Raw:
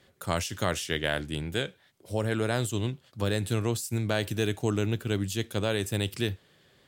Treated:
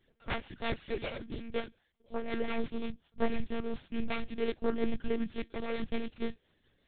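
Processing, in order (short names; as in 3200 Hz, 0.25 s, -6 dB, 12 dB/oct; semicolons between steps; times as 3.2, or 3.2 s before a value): self-modulated delay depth 0.64 ms; low shelf 110 Hz +6 dB; in parallel at -6 dB: hard clip -17.5 dBFS, distortion -19 dB; on the sum: flange 1.2 Hz, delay 0.5 ms, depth 5.6 ms, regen +7%; rotary speaker horn 5.5 Hz; vibrato 0.48 Hz 16 cents; monotone LPC vocoder at 8 kHz 230 Hz; upward expander 1.5:1, over -40 dBFS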